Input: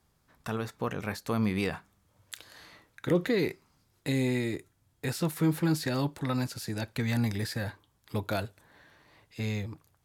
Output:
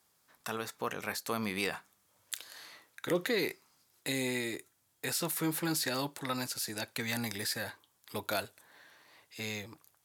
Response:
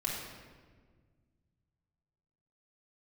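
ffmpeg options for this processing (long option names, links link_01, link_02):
-af "highpass=frequency=560:poles=1,highshelf=frequency=5200:gain=8"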